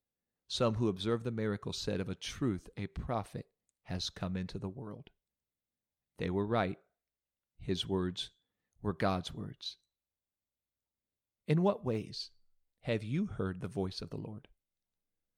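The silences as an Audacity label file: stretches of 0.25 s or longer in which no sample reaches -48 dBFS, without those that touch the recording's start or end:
3.410000	3.880000	silence
5.070000	6.190000	silence
6.740000	7.600000	silence
8.280000	8.830000	silence
9.740000	11.480000	silence
12.270000	12.850000	silence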